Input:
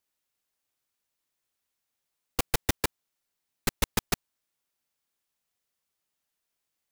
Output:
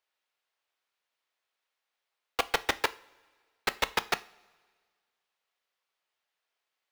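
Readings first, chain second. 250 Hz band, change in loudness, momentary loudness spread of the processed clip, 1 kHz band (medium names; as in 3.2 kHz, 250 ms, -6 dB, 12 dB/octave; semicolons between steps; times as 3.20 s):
-8.5 dB, 0.0 dB, 6 LU, +4.5 dB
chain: three-band isolator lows -21 dB, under 420 Hz, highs -16 dB, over 4.4 kHz; short-mantissa float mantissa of 2-bit; two-slope reverb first 0.37 s, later 1.7 s, from -18 dB, DRR 12.5 dB; trim +4.5 dB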